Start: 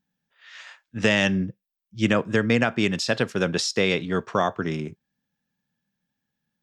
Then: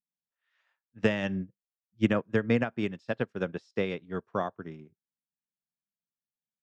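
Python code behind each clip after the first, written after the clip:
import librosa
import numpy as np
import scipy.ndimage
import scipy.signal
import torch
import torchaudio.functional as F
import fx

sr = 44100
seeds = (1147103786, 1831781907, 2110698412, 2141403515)

y = fx.lowpass(x, sr, hz=1400.0, slope=6)
y = fx.upward_expand(y, sr, threshold_db=-34.0, expansion=2.5)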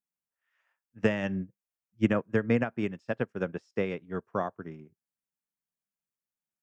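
y = fx.peak_eq(x, sr, hz=3900.0, db=-10.5, octaves=0.58)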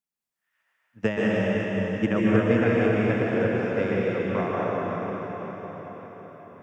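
y = fx.echo_feedback(x, sr, ms=552, feedback_pct=52, wet_db=-13)
y = fx.rev_plate(y, sr, seeds[0], rt60_s=4.8, hf_ratio=0.8, predelay_ms=115, drr_db=-6.5)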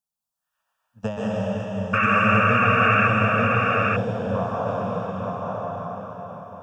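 y = fx.spec_paint(x, sr, seeds[1], shape='noise', start_s=1.93, length_s=1.15, low_hz=1100.0, high_hz=2800.0, level_db=-15.0)
y = fx.fixed_phaser(y, sr, hz=850.0, stages=4)
y = y + 10.0 ** (-3.0 / 20.0) * np.pad(y, (int(887 * sr / 1000.0), 0))[:len(y)]
y = y * 10.0 ** (3.0 / 20.0)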